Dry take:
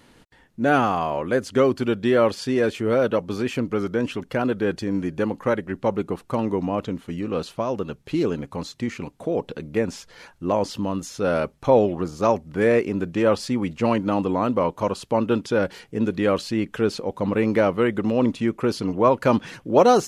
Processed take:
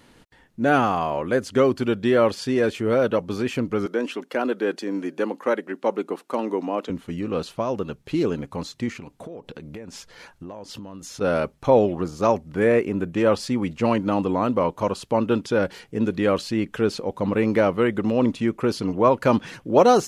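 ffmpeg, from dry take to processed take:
-filter_complex "[0:a]asettb=1/sr,asplit=3[a][b][c];[a]atrim=end=3.864[d];[b]atrim=start=3.86:end=6.9,asetpts=PTS-STARTPTS,afade=t=in:d=0.004:c=qsin,afade=t=out:st=3.036:d=0.004:c=qsin,highpass=f=250:w=0.5412,highpass=f=250:w=1.3066[e];[c]atrim=start=6.896[f];[d][e]acrossfade=d=0.004:c1=hsin:c2=qsin[g];[g][f]acrossfade=d=0.004:c1=qsin:c2=hsin,asettb=1/sr,asplit=3[h][i][j];[h]atrim=end=8.904[k];[i]atrim=start=8.9:end=11.21,asetpts=PTS-STARTPTS,afade=t=in:d=0.004:c=qsin,afade=t=out:st=2.306:d=0.004:c=qsin,acompressor=threshold=-33dB:ratio=12:attack=3.2:release=140:knee=1:detection=peak[l];[j]atrim=start=11.206[m];[k][l]acrossfade=d=0.004:c1=hsin:c2=qsin[n];[n][m]acrossfade=d=0.004:c1=qsin:c2=hsin,asettb=1/sr,asplit=3[o][p][q];[o]atrim=end=12.594[r];[p]atrim=start=12.59:end=13.16,asetpts=PTS-STARTPTS,afade=t=in:d=0.004:c=qsin,afade=t=out:st=0.566:d=0.004:c=qsin,equalizer=f=4.9k:w=1.7:g=-7.5[s];[q]atrim=start=13.156[t];[r][s]acrossfade=d=0.004:c1=hsin:c2=qsin[u];[u][t]acrossfade=d=0.004:c1=qsin:c2=hsin"

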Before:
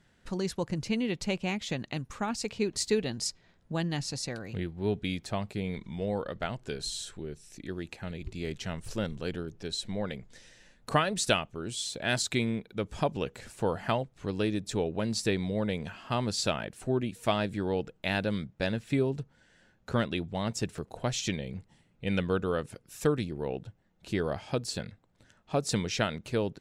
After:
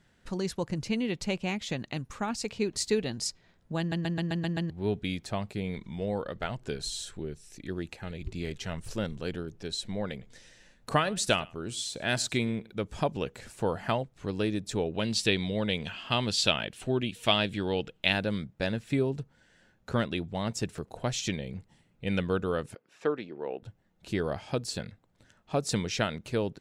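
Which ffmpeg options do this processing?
-filter_complex "[0:a]asplit=3[a][b][c];[a]afade=t=out:st=6.37:d=0.02[d];[b]aphaser=in_gain=1:out_gain=1:delay=2.5:decay=0.26:speed=1.8:type=sinusoidal,afade=t=in:st=6.37:d=0.02,afade=t=out:st=8.81:d=0.02[e];[c]afade=t=in:st=8.81:d=0.02[f];[d][e][f]amix=inputs=3:normalize=0,asettb=1/sr,asplit=3[g][h][i];[g]atrim=end=10.104[j];[h]atrim=start=10.1:end=12.71,asetpts=PTS-STARTPTS,afade=t=in:d=0.004:c=qsin,afade=t=out:st=2.606:d=0.004:c=qsin,aecho=1:1:107:0.0708,atrim=end_sample=115101[k];[i]atrim=start=12.706[l];[j][k]acrossfade=d=0.004:c1=hsin:c2=qsin[m];[m][l]acrossfade=d=0.004:c1=qsin:c2=hsin,asettb=1/sr,asplit=3[n][o][p];[n]atrim=end=14.944[q];[o]atrim=start=14.94:end=18.13,asetpts=PTS-STARTPTS,afade=t=in:d=0.004:c=qsin,afade=t=out:st=3.186:d=0.004:c=qsin,equalizer=f=3.1k:w=1.5:g=11.5[r];[p]atrim=start=18.126[s];[q][r]acrossfade=d=0.004:c1=hsin:c2=qsin[t];[t][s]acrossfade=d=0.004:c1=qsin:c2=hsin,asettb=1/sr,asplit=3[u][v][w];[u]atrim=end=22.754[x];[v]atrim=start=22.75:end=23.63,asetpts=PTS-STARTPTS,afade=t=in:d=0.004:c=qsin,afade=t=out:st=0.876:d=0.004:c=qsin,highpass=340,lowpass=2.6k[y];[w]atrim=start=23.626[z];[x][y]acrossfade=d=0.004:c1=hsin:c2=qsin[aa];[aa][z]acrossfade=d=0.004:c1=qsin:c2=hsin,asplit=8[ab][ac][ad][ae][af][ag][ah][ai];[ab]atrim=end=3.922[aj];[ac]atrim=start=3.788:end=3.922[ak];[ad]atrim=start=3.788:end=3.922[al];[ae]atrim=start=3.788:end=3.922[am];[af]atrim=start=3.788:end=3.922[an];[ag]atrim=start=3.788:end=3.922[ao];[ah]atrim=start=3.788:end=3.922[ap];[ai]atrim=start=4.698[aq];[aj][ak]acrossfade=d=0.004:c1=hsin:c2=hsin[ar];[ar][al]acrossfade=d=0.004:c1=hsin:c2=hsin[as];[as][am]acrossfade=d=0.004:c1=hsin:c2=hsin[at];[at][an]acrossfade=d=0.004:c1=hsin:c2=hsin[au];[au][ao]acrossfade=d=0.004:c1=hsin:c2=hsin[av];[av][ap]acrossfade=d=0.004:c1=hsin:c2=hsin[aw];[aw][aq]acrossfade=d=0.004:c1=hsin:c2=hsin"

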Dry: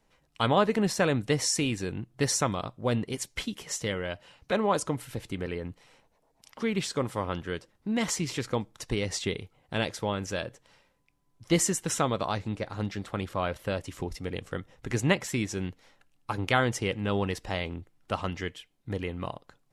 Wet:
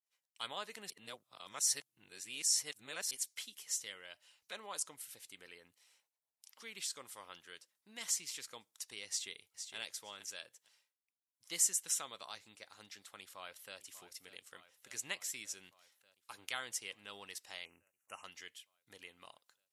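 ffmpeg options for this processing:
-filter_complex "[0:a]asplit=2[a][b];[b]afade=t=in:st=9.08:d=0.01,afade=t=out:st=9.76:d=0.01,aecho=0:1:460|920:0.398107|0.0597161[c];[a][c]amix=inputs=2:normalize=0,asplit=2[d][e];[e]afade=t=in:st=13.21:d=0.01,afade=t=out:st=13.78:d=0.01,aecho=0:1:590|1180|1770|2360|2950|3540|4130|4720|5310|5900|6490:0.199526|0.149645|0.112234|0.0841751|0.0631313|0.0473485|0.0355114|0.0266335|0.0199752|0.0149814|0.011236[f];[d][f]amix=inputs=2:normalize=0,asettb=1/sr,asplit=3[g][h][i];[g]atrim=end=17.654[j];[h]atrim=start=17.65:end=18.24,asetpts=PTS-STARTPTS,afade=t=in:d=0.004:c=qsin,afade=t=out:st=0.586:d=0.004:c=qsin,asuperstop=centerf=4100:order=20:qfactor=1.5[k];[i]atrim=start=18.236[l];[j][k]acrossfade=d=0.004:c1=hsin:c2=qsin[m];[m][l]acrossfade=d=0.004:c1=qsin:c2=hsin,asplit=3[n][o][p];[n]atrim=end=0.902[q];[o]atrim=start=0.898:end=3.112,asetpts=PTS-STARTPTS,areverse[r];[p]atrim=start=3.108[s];[q][r]acrossfade=d=0.004:c1=hsin:c2=hsin[t];[t][s]acrossfade=d=0.004:c1=hsin:c2=hsin,agate=range=-33dB:threshold=-60dB:ratio=3:detection=peak,aderivative,volume=-2.5dB"

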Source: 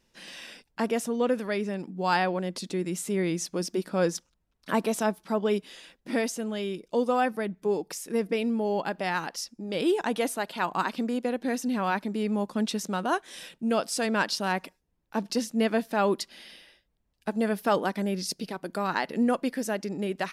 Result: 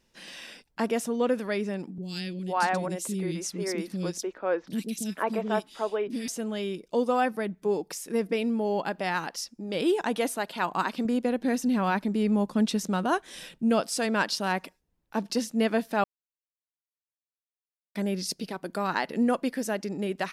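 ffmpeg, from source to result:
-filter_complex "[0:a]asettb=1/sr,asplit=3[a][b][c];[a]atrim=end=1.984[d];[b]atrim=start=1.98:end=6.28,asetpts=PTS-STARTPTS,afade=t=in:d=0.004:c=qsin,afade=t=out:st=4.296:d=0.004:c=qsin,acrossover=split=320|2700[e][f][g];[g]adelay=40[h];[f]adelay=490[i];[e][i][h]amix=inputs=3:normalize=0,atrim=end_sample=189630[j];[c]atrim=start=6.276[k];[d][j]acrossfade=d=0.004:c1=hsin:c2=qsin[l];[l][k]acrossfade=d=0.004:c1=qsin:c2=hsin,asettb=1/sr,asplit=3[m][n][o];[m]atrim=end=11.054[p];[n]atrim=start=11.05:end=13.82,asetpts=PTS-STARTPTS,afade=t=in:d=0.004:c=qsin,afade=t=out:st=2.766:d=0.004:c=qsin,lowshelf=f=170:g=10[q];[o]atrim=start=13.816[r];[p][q]acrossfade=d=0.004:c1=hsin:c2=qsin[s];[s][r]acrossfade=d=0.004:c1=qsin:c2=hsin,asplit=3[t][u][v];[t]atrim=end=16.04,asetpts=PTS-STARTPTS,afade=t=out:st=16.036:d=0.004:c=hsin[w];[u]atrim=start=16.04:end=17.95,asetpts=PTS-STARTPTS,volume=0[x];[v]atrim=start=17.95,asetpts=PTS-STARTPTS,afade=t=in:d=0.004:c=hsin[y];[w][x][y]concat=n=3:v=0:a=1"

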